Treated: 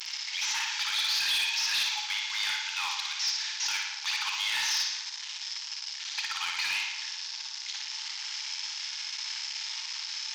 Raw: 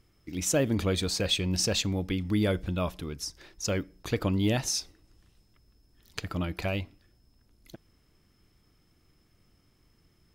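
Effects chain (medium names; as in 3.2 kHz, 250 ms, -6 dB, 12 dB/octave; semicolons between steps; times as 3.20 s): one-bit delta coder 32 kbps, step -43 dBFS; brick-wall FIR high-pass 800 Hz; peaking EQ 1.2 kHz -11 dB 0.93 oct; in parallel at -2.5 dB: peak limiter -43.5 dBFS, peak gain reduction 9.5 dB; on the sum: flutter echo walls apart 9.9 m, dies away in 0.9 s; hard clipper -35.5 dBFS, distortion -19 dB; treble shelf 2.7 kHz +8.5 dB; on a send at -11 dB: reverberation, pre-delay 3 ms; on the sum: trim +7 dB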